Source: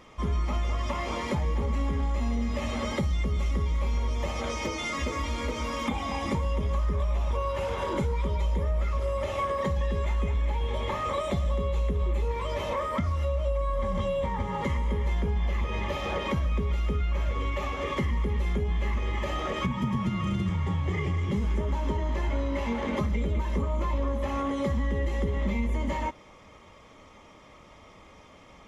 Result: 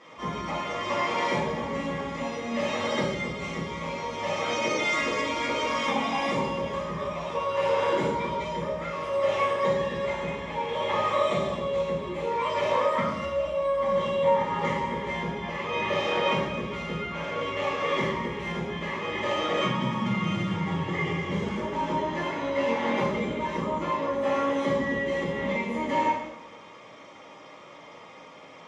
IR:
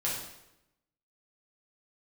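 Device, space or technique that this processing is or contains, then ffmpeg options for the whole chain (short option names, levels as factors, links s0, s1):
supermarket ceiling speaker: -filter_complex "[0:a]highpass=240,lowpass=6200[s0];[1:a]atrim=start_sample=2205[s1];[s0][s1]afir=irnorm=-1:irlink=0"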